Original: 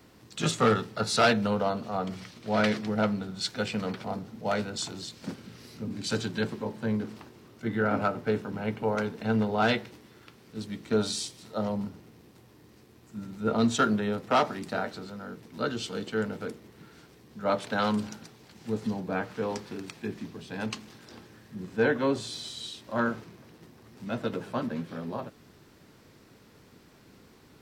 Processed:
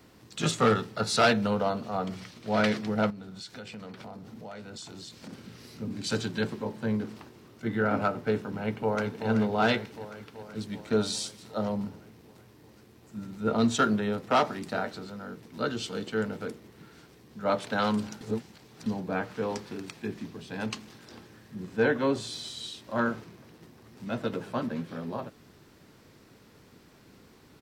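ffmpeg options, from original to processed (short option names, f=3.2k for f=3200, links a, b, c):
-filter_complex "[0:a]asettb=1/sr,asplit=3[a][b][c];[a]atrim=end=3.104[d];[b]atrim=start=3.1:end=5.33,asetpts=PTS-STARTPTS,afade=t=in:d=0.004:c=qsin,afade=t=out:st=2.226:d=0.004:c=qsin,acompressor=threshold=-40dB:ratio=5:attack=3.2:release=140:knee=1:detection=peak[e];[c]atrim=start=5.326[f];[d][e]acrossfade=d=0.004:c1=hsin:c2=qsin[g];[g][f]acrossfade=d=0.004:c1=qsin:c2=hsin,asplit=2[h][i];[i]afade=t=in:st=8.61:d=0.01,afade=t=out:st=9.28:d=0.01,aecho=0:1:380|760|1140|1520|1900|2280|2660|3040|3420|3800|4180:0.375837|0.263086|0.18416|0.128912|0.0902386|0.063167|0.0442169|0.0309518|0.0216663|0.0151664|0.0106165[j];[h][j]amix=inputs=2:normalize=0,asplit=3[k][l][m];[k]atrim=end=18.212[n];[l]atrim=start=18.208:end=18.862,asetpts=PTS-STARTPTS,areverse[o];[m]atrim=start=18.858[p];[n][o]acrossfade=d=0.004:c1=hsin:c2=hsin[q];[q][p]acrossfade=d=0.004:c1=hsin:c2=hsin"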